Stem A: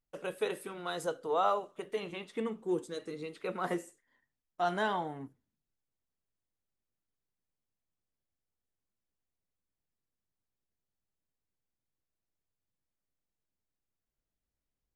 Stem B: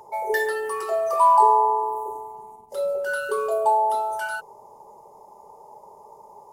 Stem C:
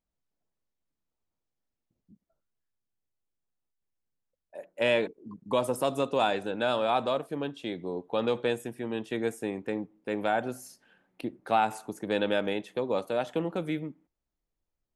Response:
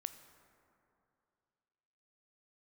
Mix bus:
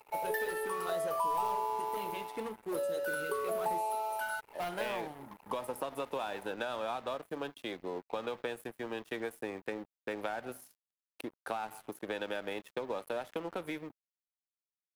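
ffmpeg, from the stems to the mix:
-filter_complex "[0:a]volume=33.5,asoftclip=hard,volume=0.0299,volume=1.06[s0];[1:a]bass=f=250:g=-8,treble=f=4000:g=-5,volume=0.668[s1];[2:a]equalizer=f=1200:t=o:w=2.3:g=7,acompressor=threshold=0.0501:ratio=6,volume=0.708[s2];[s0][s1][s2]amix=inputs=3:normalize=0,acrossover=split=300|5500[s3][s4][s5];[s3]acompressor=threshold=0.00398:ratio=4[s6];[s4]acompressor=threshold=0.0251:ratio=4[s7];[s5]acompressor=threshold=0.00126:ratio=4[s8];[s6][s7][s8]amix=inputs=3:normalize=0,aexciter=amount=6:drive=3.1:freq=9700,aeval=exprs='sgn(val(0))*max(abs(val(0))-0.00355,0)':c=same"

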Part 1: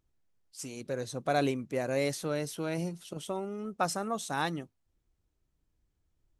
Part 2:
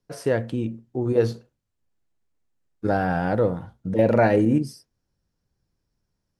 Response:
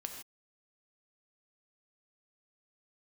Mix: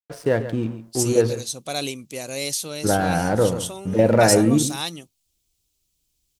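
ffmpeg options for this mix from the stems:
-filter_complex "[0:a]aexciter=amount=3.7:drive=9.5:freq=2500,adynamicequalizer=threshold=0.00794:dfrequency=2100:dqfactor=0.7:tfrequency=2100:tqfactor=0.7:attack=5:release=100:ratio=0.375:range=2:mode=cutabove:tftype=highshelf,adelay=400,volume=0.841[s0];[1:a]aeval=exprs='sgn(val(0))*max(abs(val(0))-0.00596,0)':c=same,volume=1.33,asplit=2[s1][s2];[s2]volume=0.237,aecho=0:1:138:1[s3];[s0][s1][s3]amix=inputs=3:normalize=0"

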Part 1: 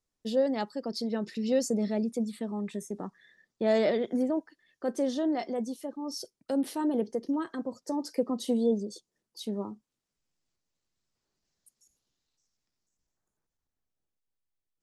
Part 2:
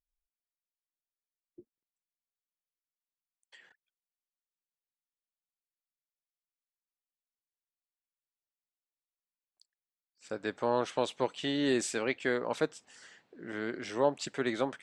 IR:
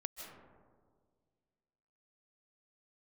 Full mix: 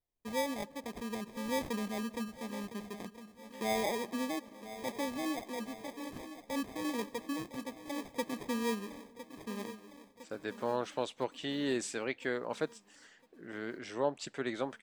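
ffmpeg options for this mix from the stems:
-filter_complex "[0:a]acrusher=samples=31:mix=1:aa=0.000001,volume=0.355,asplit=3[s0][s1][s2];[s1]volume=0.188[s3];[s2]volume=0.237[s4];[1:a]volume=0.596[s5];[2:a]atrim=start_sample=2205[s6];[s3][s6]afir=irnorm=-1:irlink=0[s7];[s4]aecho=0:1:1008|2016|3024|4032|5040|6048|7056|8064|9072:1|0.58|0.336|0.195|0.113|0.0656|0.0381|0.0221|0.0128[s8];[s0][s5][s7][s8]amix=inputs=4:normalize=0"

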